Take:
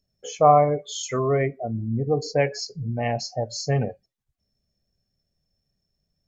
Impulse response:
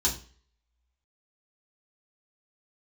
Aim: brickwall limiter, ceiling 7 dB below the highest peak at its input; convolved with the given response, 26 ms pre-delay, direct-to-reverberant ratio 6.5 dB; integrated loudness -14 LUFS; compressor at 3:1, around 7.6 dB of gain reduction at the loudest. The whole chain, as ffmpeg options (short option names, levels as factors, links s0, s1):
-filter_complex "[0:a]acompressor=threshold=0.1:ratio=3,alimiter=limit=0.133:level=0:latency=1,asplit=2[s0][s1];[1:a]atrim=start_sample=2205,adelay=26[s2];[s1][s2]afir=irnorm=-1:irlink=0,volume=0.188[s3];[s0][s3]amix=inputs=2:normalize=0,volume=4.47"